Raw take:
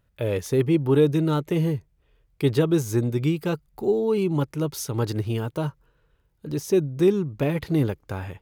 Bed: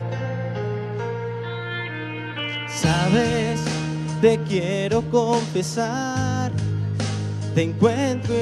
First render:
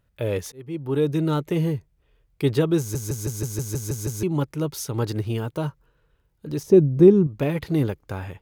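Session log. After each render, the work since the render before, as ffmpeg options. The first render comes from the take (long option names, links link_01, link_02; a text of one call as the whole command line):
ffmpeg -i in.wav -filter_complex "[0:a]asettb=1/sr,asplit=3[link_01][link_02][link_03];[link_01]atrim=end=6.634[link_04];[link_02]atrim=start=6.63:end=7.27,asetpts=PTS-STARTPTS,afade=type=in:duration=0.004:curve=qsin,afade=type=out:start_time=0.636:duration=0.004:curve=qsin,tiltshelf=frequency=970:gain=8.5[link_05];[link_03]atrim=start=7.266[link_06];[link_04][link_05]acrossfade=duration=0.004:curve1=hsin:curve2=qsin[link_07];[link_07][link_06]acrossfade=duration=0.004:curve1=qsin:curve2=hsin,asplit=11[link_08][link_09][link_10][link_11][link_12][link_13][link_14][link_15][link_16][link_17][link_18];[link_08]atrim=end=0.52,asetpts=PTS-STARTPTS,afade=type=out:start_time=0.516:duration=0.004:curve=hsin[link_19];[link_09]atrim=start=0.52:end=2.952,asetpts=PTS-STARTPTS,afade=type=in:duration=0.74[link_20];[link_10]atrim=start=2.788:end=2.952[link_21];[link_11]atrim=start=2.788:end=2.952[link_22];[link_12]atrim=start=2.788:end=2.952[link_23];[link_13]atrim=start=2.788:end=2.952[link_24];[link_14]atrim=start=2.788:end=2.952[link_25];[link_15]atrim=start=2.788:end=2.952[link_26];[link_16]atrim=start=2.788:end=2.952[link_27];[link_17]atrim=start=2.788:end=2.952[link_28];[link_18]atrim=start=4.228[link_29];[link_19][link_20]concat=n=2:v=0:a=1[link_30];[link_30][link_21]acrossfade=duration=0.004:curve1=hsin:curve2=hsin[link_31];[link_31][link_22]acrossfade=duration=0.004:curve1=hsin:curve2=hsin[link_32];[link_32][link_23]acrossfade=duration=0.004:curve1=hsin:curve2=hsin[link_33];[link_33][link_24]acrossfade=duration=0.004:curve1=hsin:curve2=hsin[link_34];[link_34][link_25]acrossfade=duration=0.004:curve1=hsin:curve2=hsin[link_35];[link_35][link_26]acrossfade=duration=0.004:curve1=hsin:curve2=hsin[link_36];[link_36][link_27]acrossfade=duration=0.004:curve1=hsin:curve2=hsin[link_37];[link_37][link_28]acrossfade=duration=0.004:curve1=hsin:curve2=hsin[link_38];[link_38][link_29]acrossfade=duration=0.004:curve1=hsin:curve2=hsin" out.wav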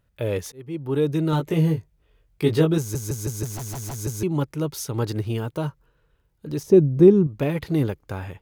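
ffmpeg -i in.wav -filter_complex "[0:a]asettb=1/sr,asplit=3[link_01][link_02][link_03];[link_01]atrim=end=1.314[link_04];[link_02]atrim=start=1.31:end=2.78,asetpts=PTS-STARTPTS,afade=type=in:duration=0.004:curve=qsin,afade=type=out:start_time=1.466:duration=0.004:curve=qsin,asplit=2[link_05][link_06];[link_06]adelay=19,volume=-3.5dB[link_07];[link_05][link_07]amix=inputs=2:normalize=0,atrim=end_sample=64827[link_08];[link_03]atrim=start=2.776[link_09];[link_04][link_08]acrossfade=duration=0.004:curve1=hsin:curve2=qsin[link_10];[link_10][link_09]acrossfade=duration=0.004:curve1=qsin:curve2=hsin,asplit=3[link_11][link_12][link_13];[link_11]afade=type=out:start_time=3.44:duration=0.02[link_14];[link_12]aeval=exprs='0.0447*(abs(mod(val(0)/0.0447+3,4)-2)-1)':channel_layout=same,afade=type=in:start_time=3.44:duration=0.02,afade=type=out:start_time=3.95:duration=0.02[link_15];[link_13]afade=type=in:start_time=3.95:duration=0.02[link_16];[link_14][link_15][link_16]amix=inputs=3:normalize=0" out.wav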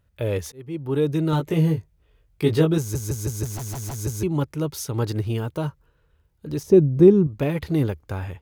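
ffmpeg -i in.wav -af "equalizer=frequency=77:width=3.2:gain=9.5" out.wav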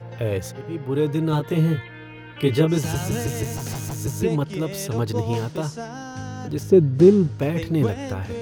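ffmpeg -i in.wav -i bed.wav -filter_complex "[1:a]volume=-10dB[link_01];[0:a][link_01]amix=inputs=2:normalize=0" out.wav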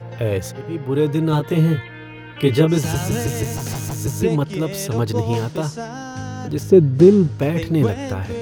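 ffmpeg -i in.wav -af "volume=3.5dB,alimiter=limit=-1dB:level=0:latency=1" out.wav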